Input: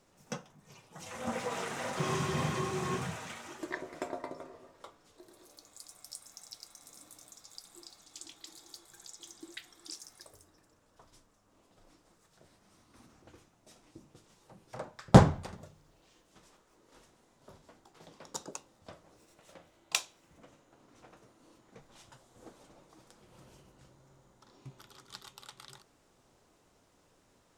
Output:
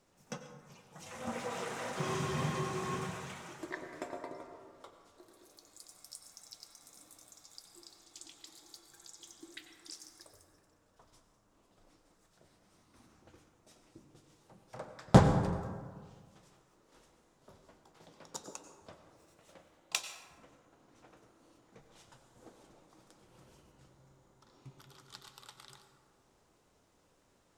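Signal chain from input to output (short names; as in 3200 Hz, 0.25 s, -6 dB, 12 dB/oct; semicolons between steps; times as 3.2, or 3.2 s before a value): plate-style reverb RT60 1.7 s, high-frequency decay 0.4×, pre-delay 80 ms, DRR 7.5 dB; gain -3.5 dB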